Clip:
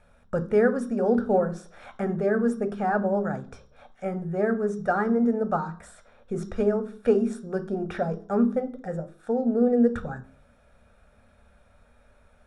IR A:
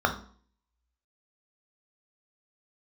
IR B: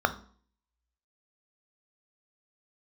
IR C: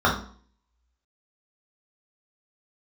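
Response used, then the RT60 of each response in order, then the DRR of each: B; 0.50, 0.50, 0.50 s; 3.0, 8.5, -5.5 dB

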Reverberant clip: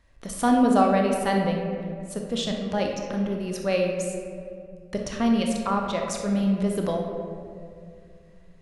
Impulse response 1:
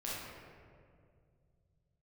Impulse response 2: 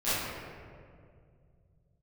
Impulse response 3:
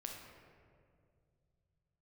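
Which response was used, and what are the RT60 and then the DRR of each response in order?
3; 2.2, 2.2, 2.2 s; -7.5, -16.0, 0.5 dB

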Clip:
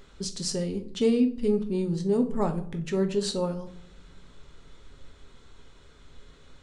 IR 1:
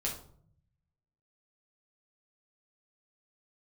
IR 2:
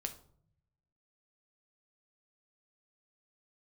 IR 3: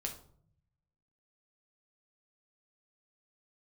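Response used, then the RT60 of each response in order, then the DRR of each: 2; 0.60, 0.60, 0.60 s; -4.0, 5.5, 1.5 dB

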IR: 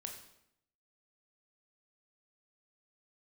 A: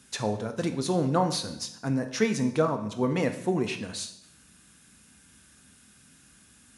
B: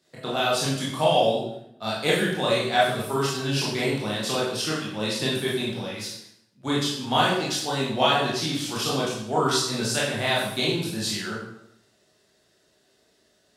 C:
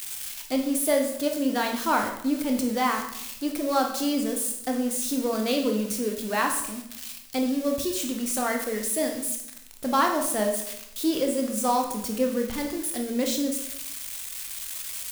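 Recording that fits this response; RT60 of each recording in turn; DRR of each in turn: C; 0.75, 0.75, 0.75 s; 7.5, -6.5, 2.5 dB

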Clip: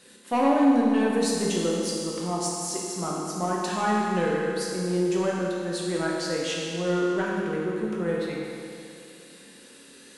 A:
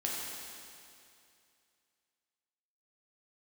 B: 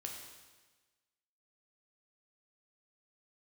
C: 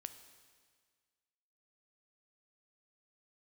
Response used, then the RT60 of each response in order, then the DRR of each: A; 2.5, 1.3, 1.7 s; -4.5, 0.0, 9.0 dB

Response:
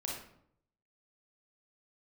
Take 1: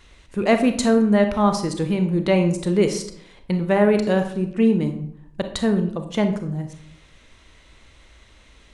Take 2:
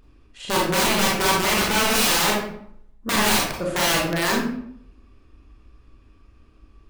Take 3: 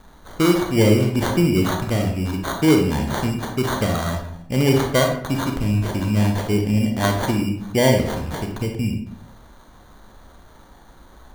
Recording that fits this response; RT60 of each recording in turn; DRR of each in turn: 2; 0.70, 0.70, 0.70 s; 7.0, -3.0, 2.5 dB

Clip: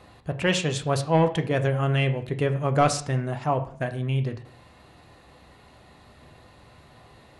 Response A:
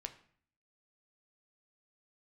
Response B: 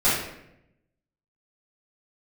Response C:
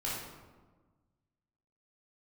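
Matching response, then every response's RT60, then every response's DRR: A; 0.55, 0.80, 1.4 s; 6.5, -13.0, -7.0 dB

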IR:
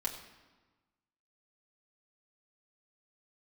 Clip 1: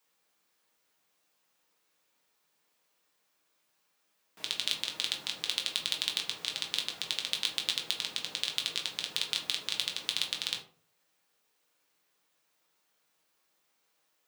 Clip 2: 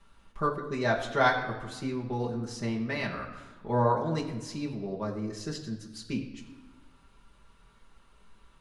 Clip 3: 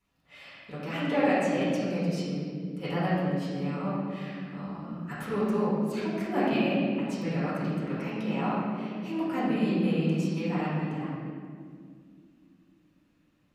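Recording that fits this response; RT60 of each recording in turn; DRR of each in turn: 2; 0.45, 1.3, 2.1 s; 0.5, -3.5, -10.0 dB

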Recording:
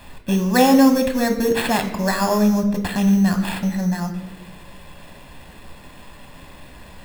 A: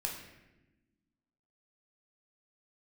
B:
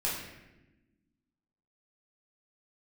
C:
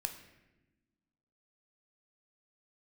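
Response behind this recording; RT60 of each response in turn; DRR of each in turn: C; 1.0, 1.0, 1.1 s; -0.5, -6.5, 6.0 dB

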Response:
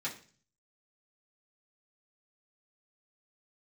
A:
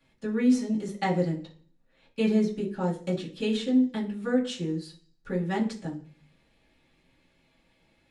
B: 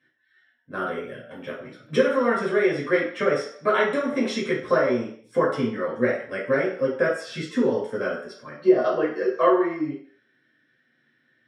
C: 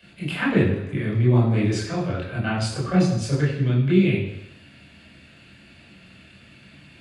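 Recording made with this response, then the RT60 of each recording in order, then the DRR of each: A; 0.40, 0.60, 0.85 s; -7.5, -5.5, -7.0 dB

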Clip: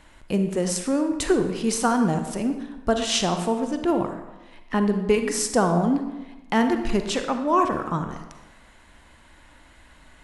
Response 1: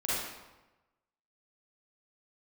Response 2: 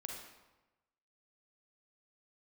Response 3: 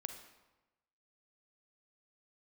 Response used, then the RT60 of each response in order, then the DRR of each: 3; 1.1, 1.1, 1.1 s; -9.5, 0.0, 6.5 dB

